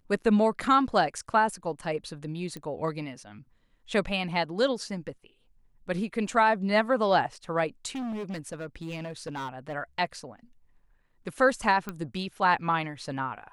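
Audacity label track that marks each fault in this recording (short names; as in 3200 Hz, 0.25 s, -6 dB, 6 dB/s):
2.570000	2.570000	pop -24 dBFS
7.950000	9.750000	clipped -31 dBFS
11.890000	11.890000	pop -19 dBFS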